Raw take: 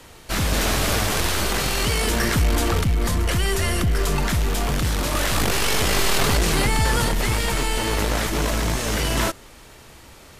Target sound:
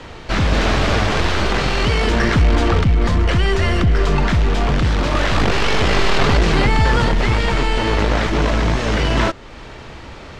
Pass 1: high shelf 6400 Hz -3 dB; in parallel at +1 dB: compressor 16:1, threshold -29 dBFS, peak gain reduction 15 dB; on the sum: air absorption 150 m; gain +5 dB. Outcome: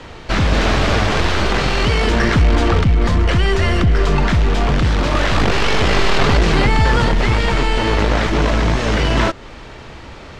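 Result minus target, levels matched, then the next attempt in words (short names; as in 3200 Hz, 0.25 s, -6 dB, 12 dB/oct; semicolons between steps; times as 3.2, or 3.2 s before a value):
compressor: peak gain reduction -6.5 dB
high shelf 6400 Hz -3 dB; in parallel at +1 dB: compressor 16:1, threshold -36 dBFS, peak gain reduction 21.5 dB; on the sum: air absorption 150 m; gain +5 dB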